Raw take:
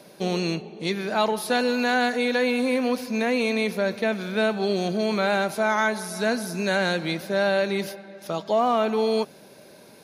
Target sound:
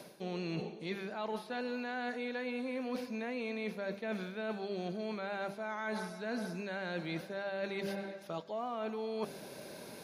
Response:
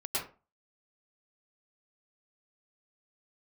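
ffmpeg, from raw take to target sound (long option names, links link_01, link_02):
-filter_complex "[0:a]acrossover=split=4000[link_01][link_02];[link_02]acompressor=threshold=-51dB:ratio=4:attack=1:release=60[link_03];[link_01][link_03]amix=inputs=2:normalize=0,bandreject=frequency=99.08:width_type=h:width=4,bandreject=frequency=198.16:width_type=h:width=4,bandreject=frequency=297.24:width_type=h:width=4,bandreject=frequency=396.32:width_type=h:width=4,bandreject=frequency=495.4:width_type=h:width=4,bandreject=frequency=594.48:width_type=h:width=4,bandreject=frequency=693.56:width_type=h:width=4,areverse,acompressor=threshold=-36dB:ratio=12,areverse,volume=1dB"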